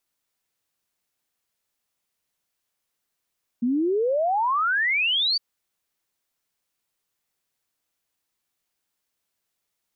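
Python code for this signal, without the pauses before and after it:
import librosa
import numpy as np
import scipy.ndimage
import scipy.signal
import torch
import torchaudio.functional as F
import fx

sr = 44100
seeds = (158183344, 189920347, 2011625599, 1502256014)

y = fx.ess(sr, length_s=1.76, from_hz=230.0, to_hz=4700.0, level_db=-19.5)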